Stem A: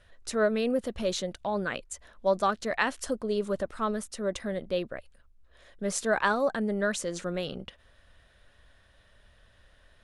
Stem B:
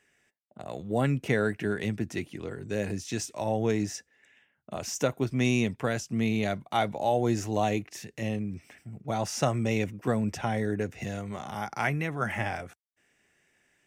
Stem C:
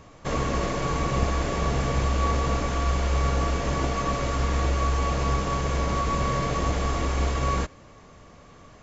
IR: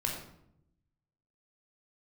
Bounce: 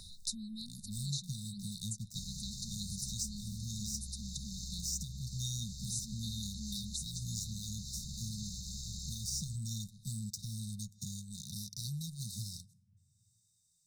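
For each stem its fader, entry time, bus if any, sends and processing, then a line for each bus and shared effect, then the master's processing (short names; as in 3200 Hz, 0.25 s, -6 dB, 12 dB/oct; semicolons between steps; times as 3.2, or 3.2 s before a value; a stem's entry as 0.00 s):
+3.0 dB, 0.00 s, no bus, no send, auto duck -6 dB, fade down 0.30 s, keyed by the second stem
-2.0 dB, 0.00 s, bus A, send -16 dB, thirty-one-band EQ 250 Hz -6 dB, 800 Hz +8 dB, 2500 Hz -8 dB, 8000 Hz +4 dB; upward expander 1.5:1, over -46 dBFS
-16.0 dB, 1.90 s, bus A, no send, compressor 4:1, threshold -26 dBFS, peak gain reduction 8 dB
bus A: 0.0 dB, sample leveller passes 3; compressor 2.5:1, threshold -24 dBFS, peak gain reduction 6 dB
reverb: on, RT60 0.75 s, pre-delay 17 ms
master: brick-wall FIR band-stop 220–3600 Hz; low shelf 400 Hz -11 dB; three-band squash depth 70%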